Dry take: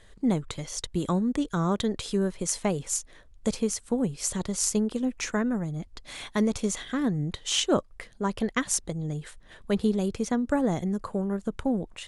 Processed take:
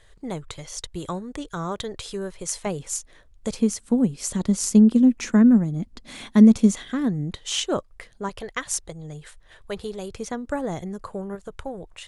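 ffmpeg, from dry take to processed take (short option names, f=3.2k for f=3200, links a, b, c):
-af "asetnsamples=n=441:p=0,asendcmd='2.66 equalizer g -2;3.59 equalizer g 8.5;4.47 equalizer g 14.5;6.74 equalizer g 4;7.38 equalizer g -4.5;8.29 equalizer g -15;10.17 equalizer g -6.5;11.35 equalizer g -15',equalizer=f=230:t=o:w=0.85:g=-11"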